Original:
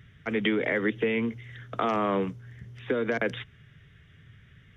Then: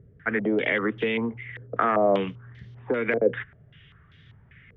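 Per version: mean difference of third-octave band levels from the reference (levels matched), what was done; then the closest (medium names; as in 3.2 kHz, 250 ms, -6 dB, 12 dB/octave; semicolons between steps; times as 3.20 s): 4.0 dB: step-sequenced low-pass 5.1 Hz 480–4200 Hz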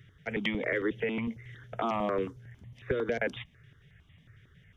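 2.5 dB: stepped phaser 11 Hz 220–1500 Hz; trim -1 dB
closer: second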